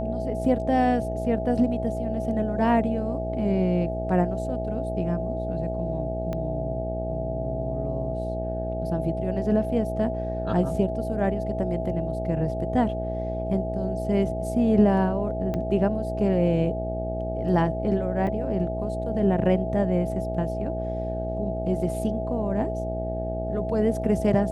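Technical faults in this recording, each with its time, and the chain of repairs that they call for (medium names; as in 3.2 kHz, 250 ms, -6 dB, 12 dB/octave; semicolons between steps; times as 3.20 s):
buzz 60 Hz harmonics 14 -31 dBFS
whine 650 Hz -30 dBFS
6.33 s: pop -19 dBFS
15.54 s: pop -18 dBFS
18.27 s: dropout 3.9 ms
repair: de-click; de-hum 60 Hz, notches 14; band-stop 650 Hz, Q 30; interpolate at 18.27 s, 3.9 ms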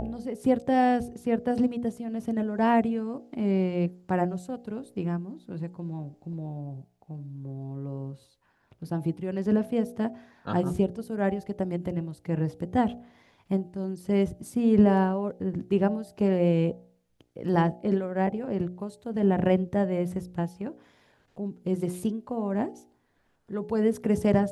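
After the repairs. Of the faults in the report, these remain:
6.33 s: pop
15.54 s: pop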